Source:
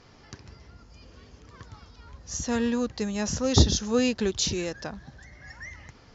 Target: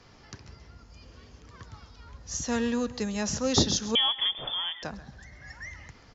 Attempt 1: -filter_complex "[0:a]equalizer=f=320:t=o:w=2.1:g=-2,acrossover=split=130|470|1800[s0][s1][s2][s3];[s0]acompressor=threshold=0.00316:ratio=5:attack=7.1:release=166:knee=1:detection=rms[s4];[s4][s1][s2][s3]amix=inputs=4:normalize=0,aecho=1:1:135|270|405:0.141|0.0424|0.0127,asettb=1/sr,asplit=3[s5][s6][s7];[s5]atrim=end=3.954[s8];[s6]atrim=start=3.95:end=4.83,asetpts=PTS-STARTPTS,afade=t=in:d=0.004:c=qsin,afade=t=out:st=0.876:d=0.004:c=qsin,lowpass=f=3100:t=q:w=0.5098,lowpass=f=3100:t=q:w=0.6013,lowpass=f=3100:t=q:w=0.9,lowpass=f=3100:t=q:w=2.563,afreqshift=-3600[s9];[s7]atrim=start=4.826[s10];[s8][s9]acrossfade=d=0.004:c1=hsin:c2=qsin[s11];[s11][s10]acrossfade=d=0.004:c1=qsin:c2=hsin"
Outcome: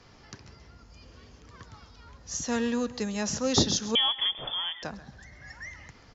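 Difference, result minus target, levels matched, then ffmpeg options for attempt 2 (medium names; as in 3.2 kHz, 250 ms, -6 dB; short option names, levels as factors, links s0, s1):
compression: peak gain reduction +8 dB
-filter_complex "[0:a]equalizer=f=320:t=o:w=2.1:g=-2,acrossover=split=130|470|1800[s0][s1][s2][s3];[s0]acompressor=threshold=0.01:ratio=5:attack=7.1:release=166:knee=1:detection=rms[s4];[s4][s1][s2][s3]amix=inputs=4:normalize=0,aecho=1:1:135|270|405:0.141|0.0424|0.0127,asettb=1/sr,asplit=3[s5][s6][s7];[s5]atrim=end=3.954[s8];[s6]atrim=start=3.95:end=4.83,asetpts=PTS-STARTPTS,afade=t=in:d=0.004:c=qsin,afade=t=out:st=0.876:d=0.004:c=qsin,lowpass=f=3100:t=q:w=0.5098,lowpass=f=3100:t=q:w=0.6013,lowpass=f=3100:t=q:w=0.9,lowpass=f=3100:t=q:w=2.563,afreqshift=-3600[s9];[s7]atrim=start=4.826[s10];[s8][s9]acrossfade=d=0.004:c1=hsin:c2=qsin[s11];[s11][s10]acrossfade=d=0.004:c1=qsin:c2=hsin"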